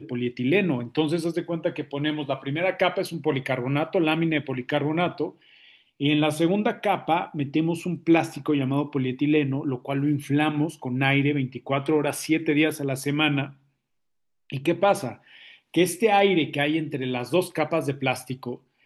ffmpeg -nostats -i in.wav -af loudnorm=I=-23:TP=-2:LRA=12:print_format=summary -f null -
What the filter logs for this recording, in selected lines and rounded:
Input Integrated:    -24.6 LUFS
Input True Peak:      -7.2 dBTP
Input LRA:             2.0 LU
Input Threshold:     -34.9 LUFS